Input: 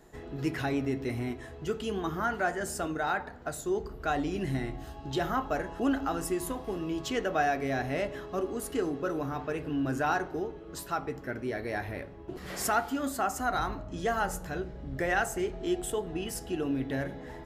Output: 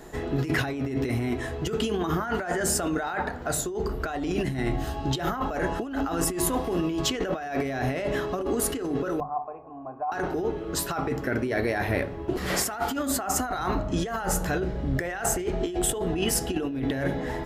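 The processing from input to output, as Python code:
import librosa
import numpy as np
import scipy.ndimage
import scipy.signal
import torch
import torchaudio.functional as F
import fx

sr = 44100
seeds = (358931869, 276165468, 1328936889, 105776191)

y = fx.formant_cascade(x, sr, vowel='a', at=(9.2, 10.12))
y = fx.hum_notches(y, sr, base_hz=50, count=4)
y = fx.over_compress(y, sr, threshold_db=-36.0, ratio=-1.0)
y = F.gain(torch.from_numpy(y), 8.5).numpy()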